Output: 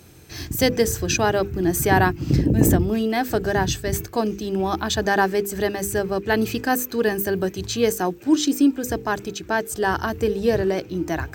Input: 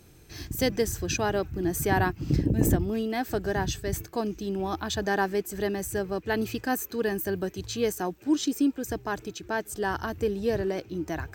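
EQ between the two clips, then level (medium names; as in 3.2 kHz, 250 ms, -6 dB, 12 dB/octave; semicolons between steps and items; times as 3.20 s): high-pass 49 Hz; hum notches 50/100/150/200/250/300/350/400/450/500 Hz; +7.5 dB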